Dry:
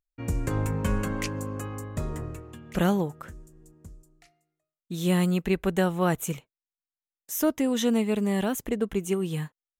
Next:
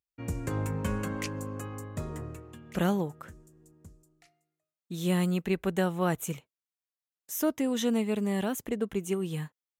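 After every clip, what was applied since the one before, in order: high-pass 64 Hz; trim -3.5 dB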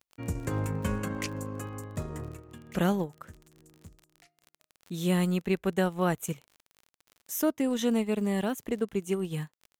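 transient shaper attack 0 dB, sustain -8 dB; crackle 37 per s -41 dBFS; trim +1 dB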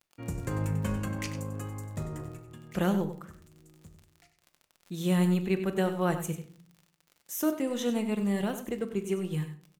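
delay 95 ms -11 dB; simulated room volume 620 m³, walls furnished, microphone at 0.86 m; trim -2.5 dB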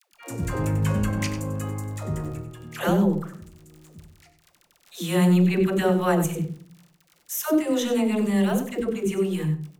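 phase dispersion lows, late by 129 ms, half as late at 470 Hz; trim +7 dB

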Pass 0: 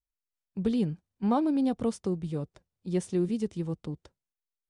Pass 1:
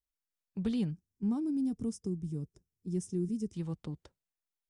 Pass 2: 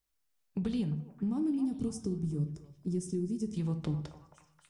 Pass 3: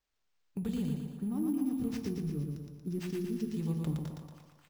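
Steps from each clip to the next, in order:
time-frequency box 0.91–3.53 s, 470–4900 Hz -16 dB; dynamic bell 430 Hz, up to -7 dB, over -43 dBFS, Q 1.3; trim -2.5 dB
compression, threshold -38 dBFS, peak gain reduction 10 dB; repeats whose band climbs or falls 268 ms, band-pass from 810 Hz, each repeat 0.7 oct, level -6.5 dB; simulated room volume 100 m³, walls mixed, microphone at 0.33 m; trim +7.5 dB
on a send: feedback delay 116 ms, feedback 54%, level -4 dB; on the sum: careless resampling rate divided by 4×, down none, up hold; trim -3 dB

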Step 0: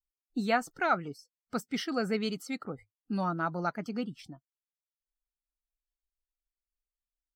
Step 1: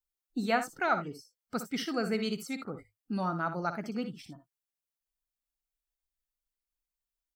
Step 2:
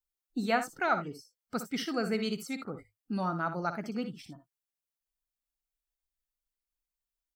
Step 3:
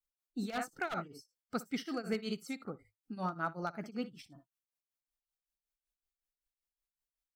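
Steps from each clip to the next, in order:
treble shelf 10 kHz +6 dB; on a send: early reflections 59 ms -10.5 dB, 77 ms -16.5 dB; on the sum: trim -1 dB
no audible change
band-stop 950 Hz, Q 26; wavefolder -22 dBFS; tremolo triangle 5.3 Hz, depth 90%; trim -1.5 dB

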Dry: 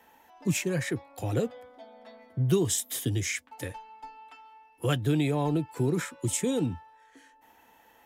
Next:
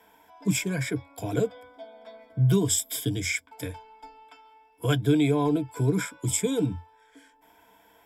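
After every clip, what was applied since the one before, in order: rippled EQ curve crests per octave 1.7, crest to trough 13 dB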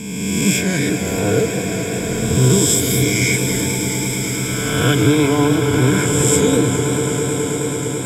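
reverse spectral sustain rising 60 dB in 1.72 s; echo with a slow build-up 108 ms, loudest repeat 8, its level -14 dB; modulated delay 198 ms, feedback 71%, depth 136 cents, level -11 dB; trim +5 dB

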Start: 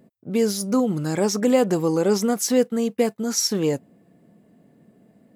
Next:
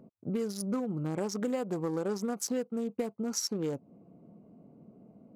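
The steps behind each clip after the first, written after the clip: local Wiener filter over 25 samples; peaking EQ 1.3 kHz +5.5 dB 1 oct; compression 5:1, threshold -31 dBFS, peak gain reduction 16.5 dB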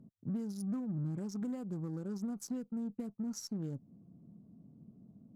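FFT filter 120 Hz 0 dB, 240 Hz -5 dB, 480 Hz -18 dB, 1.4 kHz -15 dB, 2.3 kHz -20 dB, 6.2 kHz -14 dB; saturation -30.5 dBFS, distortion -24 dB; Chebyshev shaper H 8 -36 dB, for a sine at -32 dBFS; trim +2.5 dB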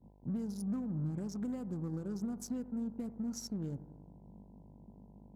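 bucket-brigade echo 87 ms, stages 1024, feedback 65%, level -16 dB; mains buzz 50 Hz, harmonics 20, -58 dBFS -5 dB/octave; expander -52 dBFS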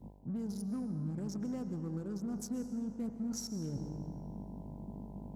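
reverse; compression 5:1, threshold -48 dBFS, peak gain reduction 14 dB; reverse; algorithmic reverb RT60 2.1 s, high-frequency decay 0.85×, pre-delay 90 ms, DRR 9.5 dB; trim +10.5 dB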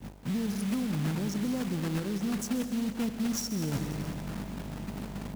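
block-companded coder 3-bit; trim +7 dB

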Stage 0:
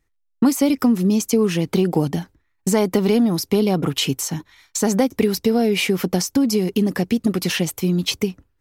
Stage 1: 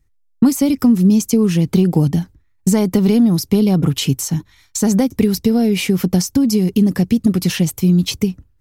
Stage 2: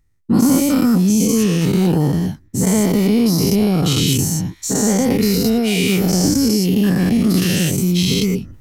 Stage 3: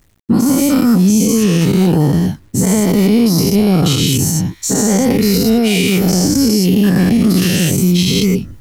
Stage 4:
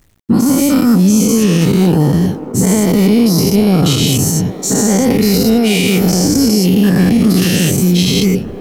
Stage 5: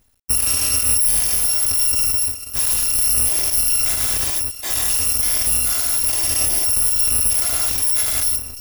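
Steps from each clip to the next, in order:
tone controls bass +13 dB, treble +5 dB; trim -2.5 dB
every event in the spectrogram widened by 240 ms; reverse; upward compressor, threshold -24 dBFS; reverse; trim -5.5 dB
peak limiter -9 dBFS, peak gain reduction 7 dB; bit crusher 10-bit; trim +5 dB
feedback echo behind a band-pass 402 ms, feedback 81%, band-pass 600 Hz, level -12 dB; trim +1 dB
bit-reversed sample order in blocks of 256 samples; trim -7.5 dB

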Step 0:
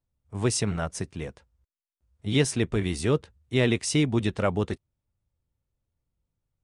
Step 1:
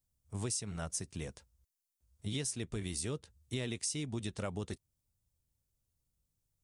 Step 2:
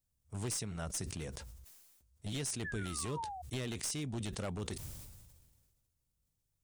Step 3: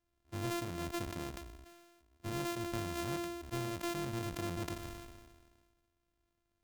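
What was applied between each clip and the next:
tone controls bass +3 dB, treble +15 dB; compression 6:1, threshold -29 dBFS, peak gain reduction 16 dB; trim -6 dB
one-sided wavefolder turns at -31.5 dBFS; painted sound fall, 2.64–3.42 s, 710–1800 Hz -49 dBFS; decay stretcher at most 36 dB/s; trim -1 dB
sorted samples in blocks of 128 samples; on a send at -20.5 dB: reverberation, pre-delay 3 ms

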